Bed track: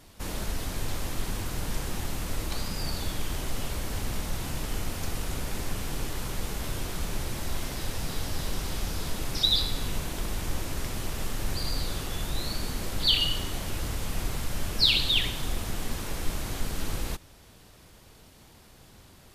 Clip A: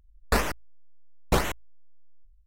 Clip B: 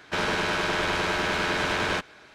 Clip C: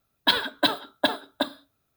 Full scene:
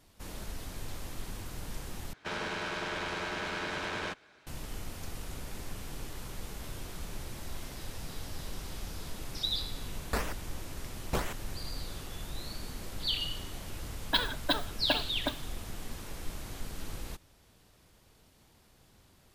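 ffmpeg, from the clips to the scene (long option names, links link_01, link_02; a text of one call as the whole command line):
ffmpeg -i bed.wav -i cue0.wav -i cue1.wav -i cue2.wav -filter_complex "[0:a]volume=-9dB,asplit=2[link_01][link_02];[link_01]atrim=end=2.134[link_03];[2:a]atrim=end=2.34,asetpts=PTS-STARTPTS,volume=-10dB[link_04];[link_02]atrim=start=4.466[link_05];[1:a]atrim=end=2.46,asetpts=PTS-STARTPTS,volume=-9dB,afade=type=in:duration=0.004:curve=hsin,afade=type=out:start_time=2.456:duration=0.004:curve=hsin,adelay=9810[link_06];[3:a]atrim=end=1.96,asetpts=PTS-STARTPTS,volume=-7.5dB,afade=type=in:duration=0.004:curve=hsin,afade=type=out:start_time=1.956:duration=0.004:curve=hsin,adelay=13860[link_07];[link_03][link_04]acrossfade=duration=0.004:curve1=hsin:curve2=hsin[link_08];[link_08][link_05]acrossfade=duration=0.004:curve1=hsin:curve2=hsin[link_09];[link_09][link_06][link_07]amix=inputs=3:normalize=0" out.wav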